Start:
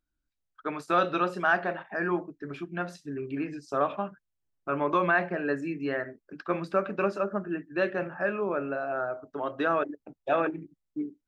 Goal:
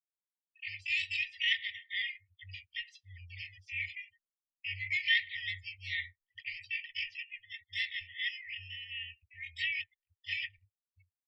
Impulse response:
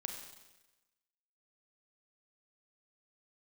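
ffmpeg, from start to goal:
-filter_complex "[0:a]asplit=4[link_01][link_02][link_03][link_04];[link_02]asetrate=29433,aresample=44100,atempo=1.49831,volume=-5dB[link_05];[link_03]asetrate=52444,aresample=44100,atempo=0.840896,volume=-3dB[link_06];[link_04]asetrate=88200,aresample=44100,atempo=0.5,volume=-5dB[link_07];[link_01][link_05][link_06][link_07]amix=inputs=4:normalize=0,afftfilt=real='re*(1-between(b*sr/4096,100,1800))':imag='im*(1-between(b*sr/4096,100,1800))':win_size=4096:overlap=0.75,agate=range=-33dB:threshold=-59dB:ratio=3:detection=peak,afftdn=noise_reduction=28:noise_floor=-48,lowpass=4300"

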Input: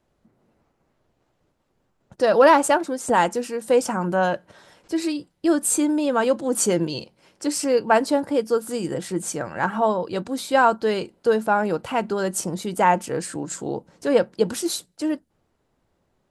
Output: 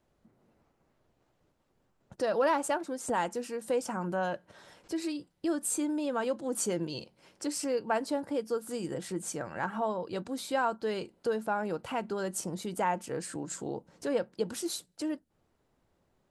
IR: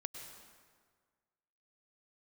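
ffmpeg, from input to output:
-af "acompressor=threshold=-38dB:ratio=1.5,volume=-3.5dB"

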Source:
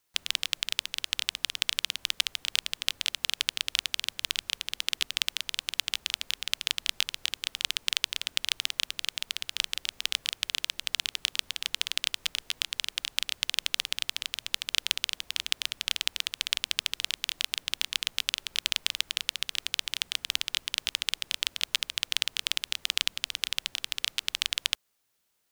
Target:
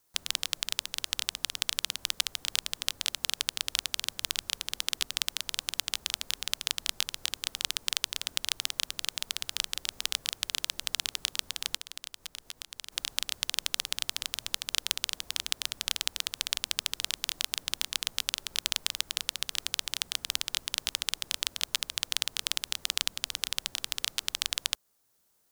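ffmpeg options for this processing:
ffmpeg -i in.wav -filter_complex "[0:a]equalizer=frequency=2600:width_type=o:width=1.5:gain=-8.5,asplit=2[link_01][link_02];[link_02]alimiter=limit=-11.5dB:level=0:latency=1:release=491,volume=-1dB[link_03];[link_01][link_03]amix=inputs=2:normalize=0,asplit=3[link_04][link_05][link_06];[link_04]afade=type=out:start_time=11.76:duration=0.02[link_07];[link_05]acompressor=threshold=-36dB:ratio=6,afade=type=in:start_time=11.76:duration=0.02,afade=type=out:start_time=12.91:duration=0.02[link_08];[link_06]afade=type=in:start_time=12.91:duration=0.02[link_09];[link_07][link_08][link_09]amix=inputs=3:normalize=0" out.wav

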